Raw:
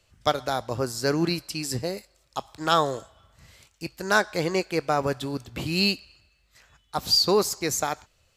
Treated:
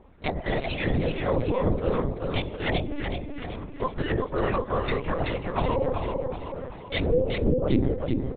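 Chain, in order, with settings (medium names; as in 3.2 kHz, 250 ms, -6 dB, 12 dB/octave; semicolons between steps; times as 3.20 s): spectrum inverted on a logarithmic axis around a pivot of 1.7 kHz; low-pass that closes with the level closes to 410 Hz, closed at -23 dBFS; bass shelf 150 Hz +11.5 dB; frequency shift -120 Hz; in parallel at +3 dB: compressor with a negative ratio -35 dBFS, ratio -1; on the sum: feedback delay 381 ms, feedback 48%, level -4 dB; LPC vocoder at 8 kHz pitch kept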